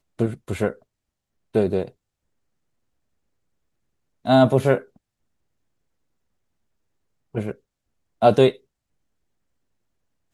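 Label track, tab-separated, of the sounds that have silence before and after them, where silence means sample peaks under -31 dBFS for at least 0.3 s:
1.550000	1.880000	sound
4.250000	4.800000	sound
7.350000	7.510000	sound
8.220000	8.510000	sound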